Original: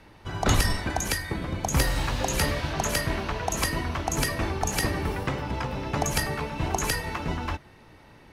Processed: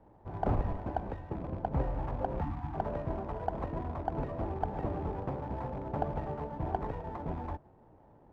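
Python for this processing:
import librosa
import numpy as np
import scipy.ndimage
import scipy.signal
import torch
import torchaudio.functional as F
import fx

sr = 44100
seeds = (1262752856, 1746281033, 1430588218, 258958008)

y = fx.rattle_buzz(x, sr, strikes_db=-30.0, level_db=-17.0)
y = fx.spec_box(y, sr, start_s=2.41, length_s=0.34, low_hz=340.0, high_hz=690.0, gain_db=-27)
y = fx.ladder_lowpass(y, sr, hz=980.0, resonance_pct=35)
y = fx.running_max(y, sr, window=5)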